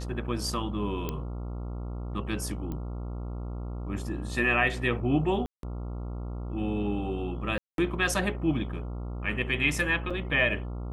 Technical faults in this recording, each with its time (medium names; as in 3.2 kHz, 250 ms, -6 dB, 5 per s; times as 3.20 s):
buzz 60 Hz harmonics 23 -35 dBFS
1.09 s: pop -17 dBFS
2.72 s: pop -24 dBFS
5.46–5.63 s: dropout 172 ms
7.58–7.78 s: dropout 202 ms
10.10–10.11 s: dropout 5.5 ms